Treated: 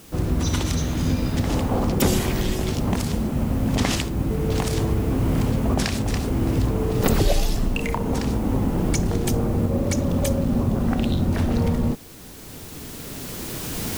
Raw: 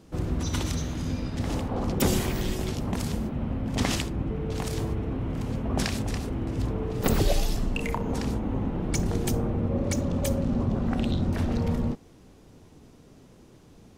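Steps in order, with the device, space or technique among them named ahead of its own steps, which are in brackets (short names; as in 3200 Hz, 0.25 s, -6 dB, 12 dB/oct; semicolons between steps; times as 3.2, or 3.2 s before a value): cheap recorder with automatic gain (white noise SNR 26 dB; recorder AGC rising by 8.1 dB/s); gain +4 dB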